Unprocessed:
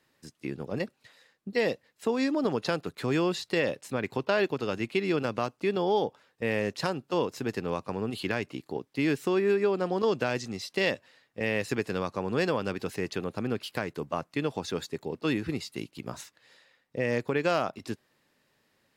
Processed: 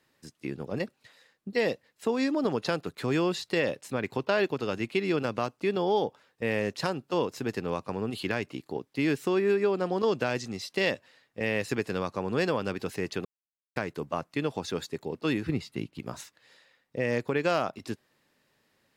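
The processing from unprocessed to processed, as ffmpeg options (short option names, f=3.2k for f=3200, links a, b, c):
-filter_complex "[0:a]asettb=1/sr,asplit=3[a][b][c];[a]atrim=end=15.494[d];[b]atrim=start=15.49:end=16,asetpts=PTS-STARTPTS,afade=t=in:d=0.004:c=qsin,afade=t=out:st=0.506:d=0.004:c=qsin,bass=f=250:g=6,treble=f=4k:g=-8[e];[c]atrim=start=15.996[f];[d][e]acrossfade=d=0.004:c1=hsin:c2=qsin[g];[g][f]acrossfade=d=0.004:c1=qsin:c2=hsin,asplit=3[h][i][j];[h]atrim=end=13.25,asetpts=PTS-STARTPTS,afade=t=out:st=13.246:d=0.004:c=hsin[k];[i]atrim=start=13.25:end=13.76,asetpts=PTS-STARTPTS,volume=0[l];[j]atrim=start=13.76,asetpts=PTS-STARTPTS,afade=t=in:d=0.004:c=hsin[m];[k][l][m]concat=n=3:v=0:a=1"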